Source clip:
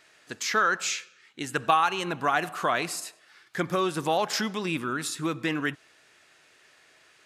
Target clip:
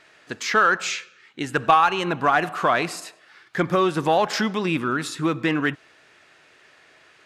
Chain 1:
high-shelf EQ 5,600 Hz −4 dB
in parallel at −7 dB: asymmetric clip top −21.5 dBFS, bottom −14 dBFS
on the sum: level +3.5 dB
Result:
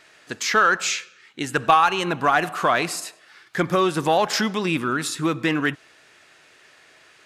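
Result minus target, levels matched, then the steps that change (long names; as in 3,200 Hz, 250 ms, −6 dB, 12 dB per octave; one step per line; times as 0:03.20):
8,000 Hz band +5.0 dB
change: high-shelf EQ 5,600 Hz −13 dB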